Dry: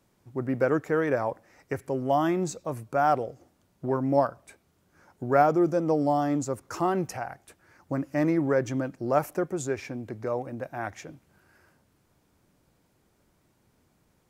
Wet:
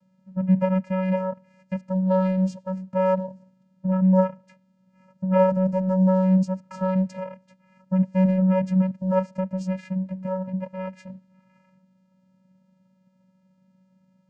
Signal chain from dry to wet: vocoder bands 8, square 187 Hz; trim +5 dB

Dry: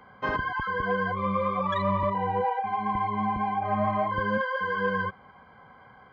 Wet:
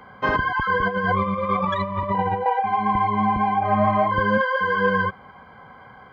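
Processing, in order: 0.69–2.46 s: compressor with a negative ratio -29 dBFS, ratio -0.5; trim +7 dB

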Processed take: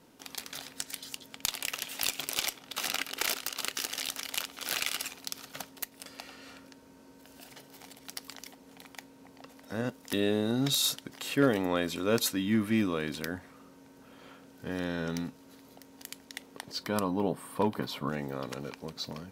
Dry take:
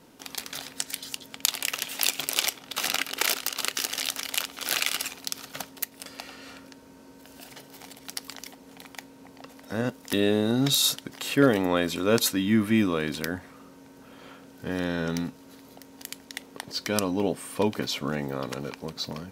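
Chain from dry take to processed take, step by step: 16.83–18.09 s: fifteen-band graphic EQ 160 Hz +5 dB, 1 kHz +7 dB, 2.5 kHz -5 dB, 6.3 kHz -10 dB; one-sided clip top -15 dBFS; trim -5 dB

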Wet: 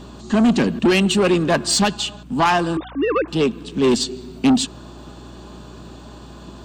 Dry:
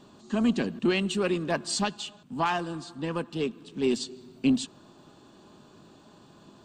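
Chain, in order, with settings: 2.77–3.28 s: formants replaced by sine waves; Chebyshev shaper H 5 -16 dB, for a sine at -14.5 dBFS; hum 60 Hz, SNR 22 dB; trim +8 dB

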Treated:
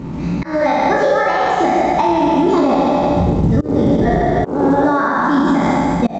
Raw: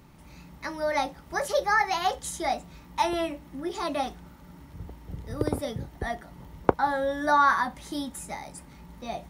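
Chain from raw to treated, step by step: spectral sustain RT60 2.42 s; tempo 1.5×; treble shelf 5 kHz -11 dB; on a send: loudspeakers at several distances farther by 20 m -7 dB, 53 m -6 dB; on the sum: compression 12:1, threshold -30 dBFS, peak gain reduction 19.5 dB; slow attack 267 ms; peaking EQ 240 Hz +14.5 dB 2.5 oct; loudness maximiser +19 dB; trim -4.5 dB; A-law 128 kbps 16 kHz

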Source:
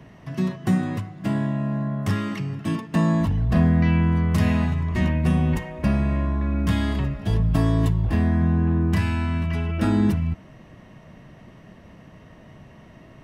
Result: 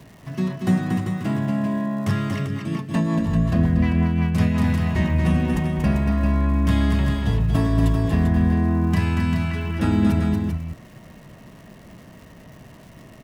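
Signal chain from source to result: multi-tap echo 234/393 ms -5/-6.5 dB; crackle 430 per s -42 dBFS; 2.46–4.64 s: rotary cabinet horn 5.5 Hz

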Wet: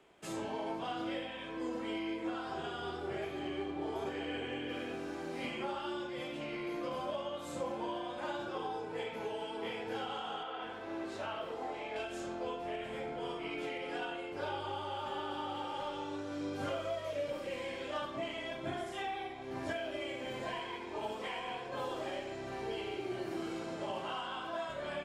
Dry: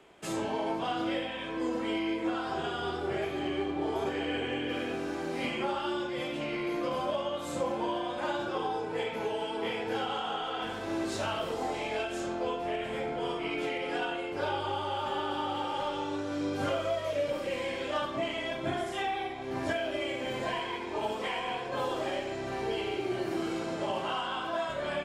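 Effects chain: 10.43–11.96 s: tone controls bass -7 dB, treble -11 dB; trim -6.5 dB

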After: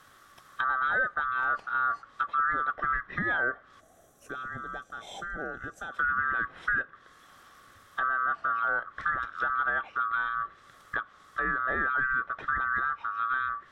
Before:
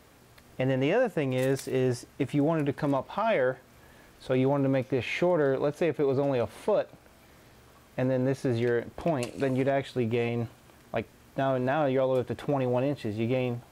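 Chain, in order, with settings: split-band scrambler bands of 1 kHz; time-frequency box 3.80–5.93 s, 850–5600 Hz -14 dB; low-pass that closes with the level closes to 1.6 kHz, closed at -27 dBFS

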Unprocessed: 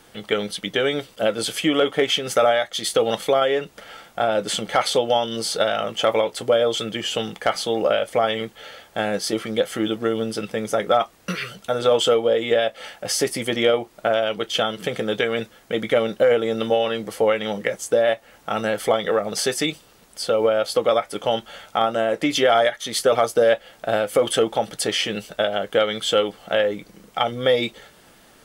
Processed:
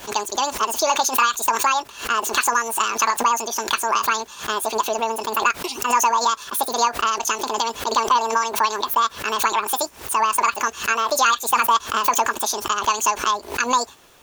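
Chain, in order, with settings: speed mistake 7.5 ips tape played at 15 ips; swell ahead of each attack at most 140 dB/s

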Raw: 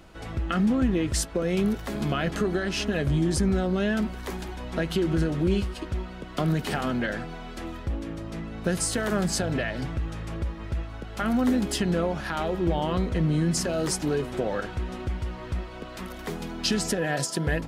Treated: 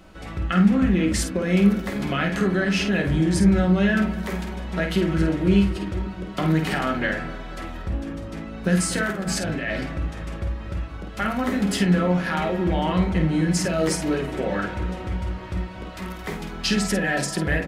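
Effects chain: dynamic bell 2.1 kHz, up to +7 dB, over -48 dBFS, Q 1.6; 9.04–9.81 s: compressor with a negative ratio -28 dBFS, ratio -0.5; doubling 50 ms -7.5 dB; feedback echo behind a low-pass 241 ms, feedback 65%, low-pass 1.2 kHz, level -14.5 dB; reverberation RT60 0.35 s, pre-delay 3 ms, DRR 4.5 dB

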